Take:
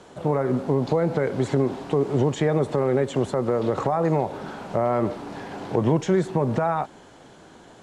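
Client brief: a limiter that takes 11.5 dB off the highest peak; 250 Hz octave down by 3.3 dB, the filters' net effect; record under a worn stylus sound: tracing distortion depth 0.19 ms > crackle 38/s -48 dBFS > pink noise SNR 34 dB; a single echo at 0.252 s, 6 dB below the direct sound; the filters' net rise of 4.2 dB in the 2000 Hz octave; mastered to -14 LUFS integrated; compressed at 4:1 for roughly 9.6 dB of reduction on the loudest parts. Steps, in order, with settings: bell 250 Hz -5 dB; bell 2000 Hz +5.5 dB; compressor 4:1, threshold -30 dBFS; limiter -28 dBFS; echo 0.252 s -6 dB; tracing distortion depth 0.19 ms; crackle 38/s -48 dBFS; pink noise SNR 34 dB; gain +22.5 dB

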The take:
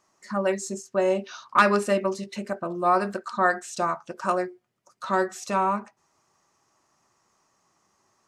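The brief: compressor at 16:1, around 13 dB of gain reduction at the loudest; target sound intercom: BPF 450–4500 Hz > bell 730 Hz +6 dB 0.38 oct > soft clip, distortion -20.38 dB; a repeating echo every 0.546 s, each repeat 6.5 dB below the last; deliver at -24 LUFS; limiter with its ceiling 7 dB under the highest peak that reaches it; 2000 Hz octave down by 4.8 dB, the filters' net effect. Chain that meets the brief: bell 2000 Hz -7 dB; compressor 16:1, threshold -27 dBFS; limiter -24.5 dBFS; BPF 450–4500 Hz; bell 730 Hz +6 dB 0.38 oct; feedback echo 0.546 s, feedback 47%, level -6.5 dB; soft clip -24 dBFS; gain +13 dB

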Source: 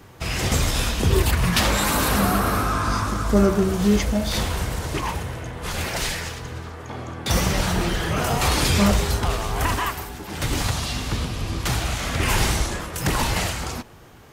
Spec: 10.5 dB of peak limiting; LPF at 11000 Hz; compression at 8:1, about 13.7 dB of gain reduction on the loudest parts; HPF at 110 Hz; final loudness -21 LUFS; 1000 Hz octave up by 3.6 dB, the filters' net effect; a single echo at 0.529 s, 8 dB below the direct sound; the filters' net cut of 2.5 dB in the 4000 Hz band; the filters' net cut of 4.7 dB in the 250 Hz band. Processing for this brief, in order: HPF 110 Hz; LPF 11000 Hz; bell 250 Hz -6.5 dB; bell 1000 Hz +5 dB; bell 4000 Hz -3.5 dB; compressor 8:1, threshold -31 dBFS; limiter -29.5 dBFS; echo 0.529 s -8 dB; gain +16.5 dB

